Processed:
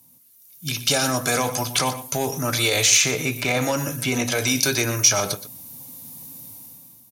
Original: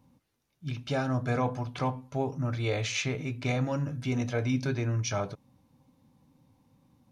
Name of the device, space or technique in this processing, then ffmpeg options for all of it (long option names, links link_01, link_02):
FM broadcast chain: -filter_complex "[0:a]asettb=1/sr,asplit=3[link_01][link_02][link_03];[link_01]atrim=end=3.114[link_04];[link_02]atrim=start=3.11:end=4.32,asetpts=PTS-STARTPTS,afade=type=in:duration=0.004:curve=qsin,afade=type=out:start_time=1.206:duration=0.004:curve=qsin,acrossover=split=2800[link_05][link_06];[link_06]acompressor=threshold=-58dB:ratio=4:attack=1:release=60[link_07];[link_05][link_07]amix=inputs=2:normalize=0[link_08];[link_03]atrim=start=4.316[link_09];[link_04][link_08]acrossfade=duration=0.004:curve1=hsin:curve2=qsin[link_10];[link_10][link_09]acrossfade=duration=0.004:curve1=qsin:curve2=hsin,highpass=77,dynaudnorm=framelen=190:gausssize=7:maxgain=14.5dB,acrossover=split=290|2000[link_11][link_12][link_13];[link_11]acompressor=threshold=-29dB:ratio=4[link_14];[link_12]acompressor=threshold=-18dB:ratio=4[link_15];[link_13]acompressor=threshold=-26dB:ratio=4[link_16];[link_14][link_15][link_16]amix=inputs=3:normalize=0,aemphasis=mode=production:type=75fm,alimiter=limit=-13dB:level=0:latency=1:release=27,asoftclip=type=hard:threshold=-15dB,lowpass=frequency=15000:width=0.5412,lowpass=frequency=15000:width=1.3066,aemphasis=mode=production:type=75fm,aecho=1:1:120:0.2"